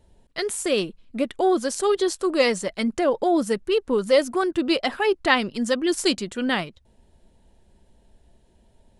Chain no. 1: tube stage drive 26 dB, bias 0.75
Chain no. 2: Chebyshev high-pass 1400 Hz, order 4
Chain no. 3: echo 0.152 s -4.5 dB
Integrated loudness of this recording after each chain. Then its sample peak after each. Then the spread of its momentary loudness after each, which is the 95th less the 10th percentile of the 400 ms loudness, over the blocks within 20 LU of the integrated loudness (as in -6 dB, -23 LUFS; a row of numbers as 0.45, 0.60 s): -31.0, -30.0, -21.5 LUFS; -21.5, -7.0, -3.0 dBFS; 4, 14, 8 LU